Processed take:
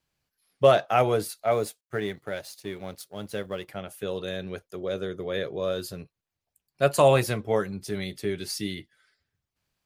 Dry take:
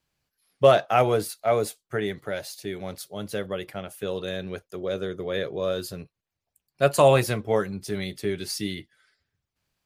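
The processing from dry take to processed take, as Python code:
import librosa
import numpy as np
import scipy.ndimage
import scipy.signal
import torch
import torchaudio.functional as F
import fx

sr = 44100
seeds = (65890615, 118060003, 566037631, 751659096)

y = fx.law_mismatch(x, sr, coded='A', at=(1.51, 3.7))
y = y * 10.0 ** (-1.5 / 20.0)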